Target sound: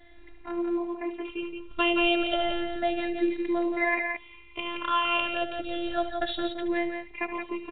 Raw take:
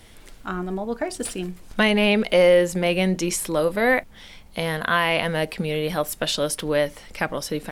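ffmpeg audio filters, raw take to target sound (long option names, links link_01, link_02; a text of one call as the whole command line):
ffmpeg -i in.wav -filter_complex "[0:a]afftfilt=real='re*pow(10,15/40*sin(2*PI*(0.78*log(max(b,1)*sr/1024/100)/log(2)-(0.31)*(pts-256)/sr)))':imag='im*pow(10,15/40*sin(2*PI*(0.78*log(max(b,1)*sr/1024/100)/log(2)-(0.31)*(pts-256)/sr)))':win_size=1024:overlap=0.75,afftfilt=real='hypot(re,im)*cos(PI*b)':imag='0':win_size=512:overlap=0.75,asplit=2[link_01][link_02];[link_02]aecho=0:1:72.89|172:0.251|0.501[link_03];[link_01][link_03]amix=inputs=2:normalize=0,volume=-4dB" -ar 8000 -c:a pcm_alaw out.wav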